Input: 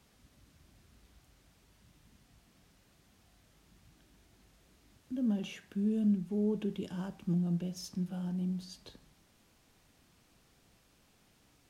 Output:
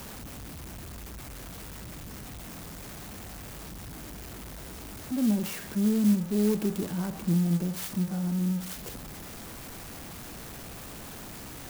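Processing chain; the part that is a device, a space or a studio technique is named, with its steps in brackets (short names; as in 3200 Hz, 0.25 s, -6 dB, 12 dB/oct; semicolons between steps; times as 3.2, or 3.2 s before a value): early CD player with a faulty converter (zero-crossing step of -42 dBFS; clock jitter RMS 0.08 ms); gain +5.5 dB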